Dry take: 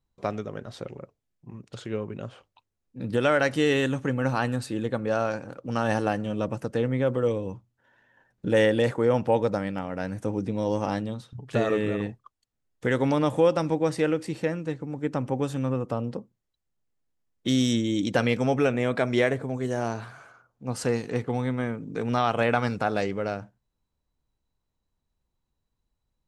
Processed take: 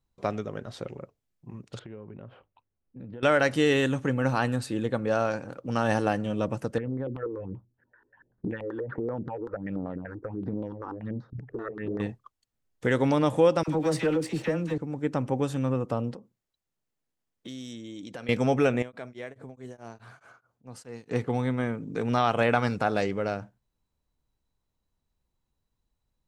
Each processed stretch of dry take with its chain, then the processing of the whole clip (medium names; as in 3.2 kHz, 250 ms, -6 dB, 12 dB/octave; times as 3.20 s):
1.79–3.23 s: band-stop 1.2 kHz, Q 26 + compression 4:1, threshold -39 dBFS + distance through air 480 m
6.78–12.00 s: LFO low-pass square 5.2 Hz 370–1700 Hz + compression 10:1, threshold -27 dBFS + phase shifter stages 6, 1.4 Hz, lowest notch 160–2800 Hz
13.63–14.78 s: waveshaping leveller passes 1 + compression 1.5:1, threshold -27 dBFS + phase dispersion lows, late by 50 ms, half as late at 890 Hz
16.14–18.29 s: compression 3:1, threshold -41 dBFS + bass shelf 100 Hz -9 dB
18.82–21.11 s: high-pass 61 Hz + compression 2:1, threshold -46 dBFS + tremolo of two beating tones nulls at 4.7 Hz
whole clip: none